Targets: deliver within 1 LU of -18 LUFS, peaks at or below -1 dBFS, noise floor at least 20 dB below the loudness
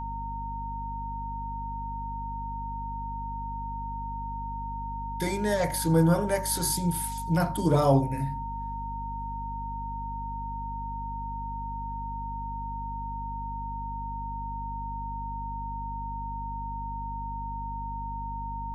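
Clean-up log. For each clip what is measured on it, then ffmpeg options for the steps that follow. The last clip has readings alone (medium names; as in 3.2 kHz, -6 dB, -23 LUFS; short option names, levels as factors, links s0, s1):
hum 50 Hz; highest harmonic 250 Hz; hum level -35 dBFS; steady tone 920 Hz; tone level -34 dBFS; loudness -31.5 LUFS; peak level -9.5 dBFS; loudness target -18.0 LUFS
-> -af "bandreject=f=50:t=h:w=4,bandreject=f=100:t=h:w=4,bandreject=f=150:t=h:w=4,bandreject=f=200:t=h:w=4,bandreject=f=250:t=h:w=4"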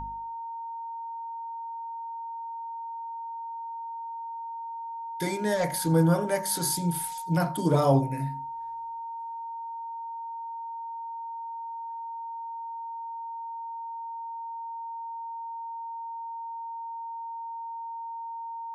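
hum not found; steady tone 920 Hz; tone level -34 dBFS
-> -af "bandreject=f=920:w=30"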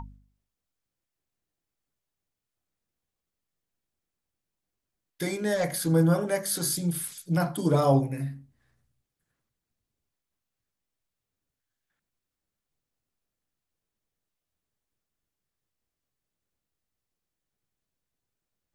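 steady tone not found; loudness -26.5 LUFS; peak level -10.0 dBFS; loudness target -18.0 LUFS
-> -af "volume=2.66"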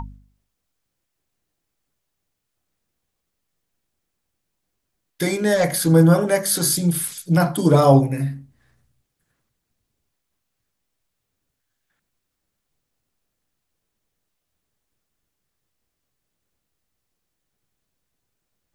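loudness -18.0 LUFS; peak level -1.5 dBFS; noise floor -78 dBFS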